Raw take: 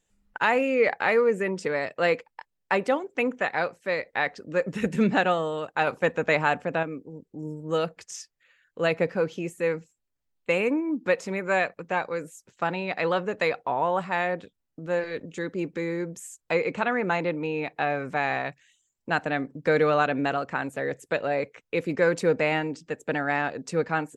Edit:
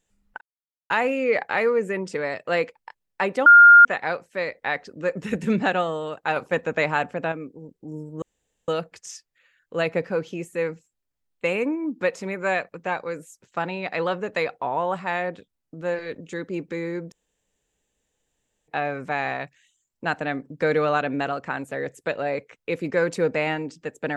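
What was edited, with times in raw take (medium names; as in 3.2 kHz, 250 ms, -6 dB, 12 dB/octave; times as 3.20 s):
0.41 s: insert silence 0.49 s
2.97–3.36 s: bleep 1.41 kHz -6 dBFS
7.73 s: insert room tone 0.46 s
16.17–17.73 s: room tone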